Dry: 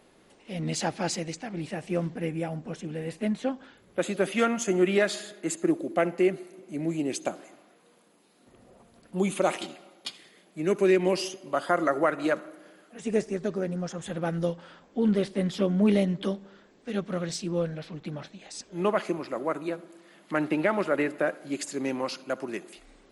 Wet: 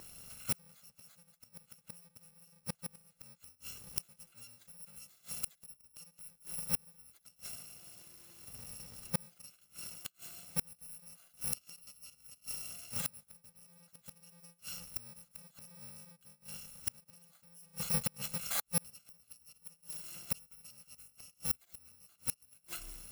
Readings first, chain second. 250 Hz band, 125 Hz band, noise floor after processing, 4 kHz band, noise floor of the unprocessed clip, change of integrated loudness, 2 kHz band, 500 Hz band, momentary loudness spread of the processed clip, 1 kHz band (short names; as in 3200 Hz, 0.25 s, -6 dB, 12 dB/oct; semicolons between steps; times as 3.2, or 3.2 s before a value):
-24.5 dB, -15.5 dB, -73 dBFS, -8.5 dB, -60 dBFS, -11.0 dB, -18.5 dB, -30.5 dB, 20 LU, -22.0 dB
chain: FFT order left unsorted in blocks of 128 samples; flipped gate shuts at -27 dBFS, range -37 dB; gain +7 dB